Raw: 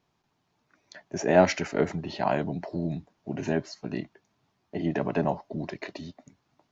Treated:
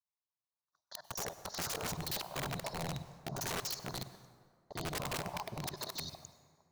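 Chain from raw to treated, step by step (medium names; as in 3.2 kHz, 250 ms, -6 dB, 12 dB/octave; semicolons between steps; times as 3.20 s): time reversed locally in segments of 48 ms; expander -52 dBFS; FFT filter 130 Hz 0 dB, 260 Hz -14 dB, 1.1 kHz +11 dB, 2.6 kHz -24 dB, 3.8 kHz +13 dB; compressor with a negative ratio -30 dBFS, ratio -0.5; integer overflow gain 24 dB; plate-style reverb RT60 2 s, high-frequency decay 0.55×, pre-delay 85 ms, DRR 14 dB; trim -7 dB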